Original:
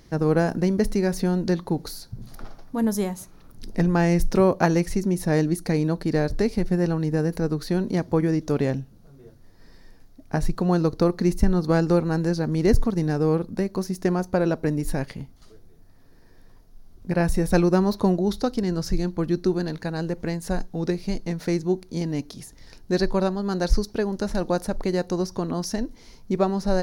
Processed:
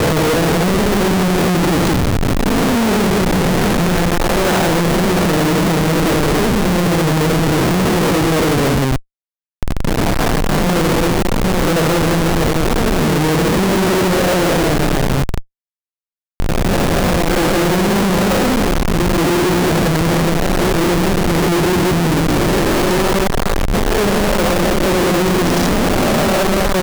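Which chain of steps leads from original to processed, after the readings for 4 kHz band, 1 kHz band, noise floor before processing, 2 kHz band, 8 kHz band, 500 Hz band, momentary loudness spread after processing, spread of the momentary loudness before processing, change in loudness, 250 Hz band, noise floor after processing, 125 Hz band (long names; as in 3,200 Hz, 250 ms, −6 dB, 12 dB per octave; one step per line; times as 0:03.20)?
+18.0 dB, +14.0 dB, −50 dBFS, +15.5 dB, +16.0 dB, +9.0 dB, 3 LU, 9 LU, +9.0 dB, +8.5 dB, below −85 dBFS, +8.5 dB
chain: peak hold with a rise ahead of every peak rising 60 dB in 2.61 s
noise gate −33 dBFS, range −17 dB
treble cut that deepens with the level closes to 2,500 Hz, closed at −12.5 dBFS
on a send: single-tap delay 179 ms −5 dB
on the sum: comparator with hysteresis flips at −28 dBFS
level +4.5 dB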